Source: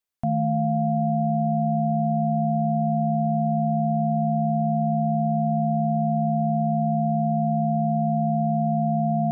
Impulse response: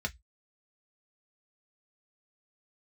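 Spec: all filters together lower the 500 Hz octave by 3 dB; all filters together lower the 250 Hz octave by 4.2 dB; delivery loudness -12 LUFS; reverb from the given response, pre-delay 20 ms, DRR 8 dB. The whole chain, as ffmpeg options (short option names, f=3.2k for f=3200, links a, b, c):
-filter_complex "[0:a]equalizer=f=250:t=o:g=-5,equalizer=f=500:t=o:g=-5,asplit=2[a][b];[1:a]atrim=start_sample=2205,adelay=20[c];[b][c]afir=irnorm=-1:irlink=0,volume=-12dB[d];[a][d]amix=inputs=2:normalize=0,volume=12dB"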